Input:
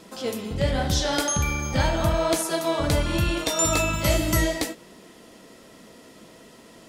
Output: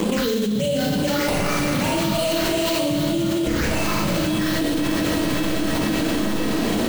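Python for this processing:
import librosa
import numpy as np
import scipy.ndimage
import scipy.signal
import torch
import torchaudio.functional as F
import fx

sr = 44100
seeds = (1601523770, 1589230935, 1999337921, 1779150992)

p1 = fx.spec_expand(x, sr, power=1.9)
p2 = scipy.signal.sosfilt(scipy.signal.butter(4, 170.0, 'highpass', fs=sr, output='sos'), p1)
p3 = fx.notch(p2, sr, hz=620.0, q=14.0)
p4 = fx.sample_hold(p3, sr, seeds[0], rate_hz=3600.0, jitter_pct=20)
p5 = fx.phaser_stages(p4, sr, stages=6, low_hz=600.0, high_hz=1900.0, hz=3.3, feedback_pct=25)
p6 = np.sign(p5) * np.maximum(np.abs(p5) - 10.0 ** (-54.5 / 20.0), 0.0)
p7 = p6 + fx.echo_diffused(p6, sr, ms=502, feedback_pct=56, wet_db=-11, dry=0)
p8 = fx.rev_schroeder(p7, sr, rt60_s=1.1, comb_ms=30, drr_db=-4.5)
p9 = fx.env_flatten(p8, sr, amount_pct=100)
y = p9 * 10.0 ** (-3.5 / 20.0)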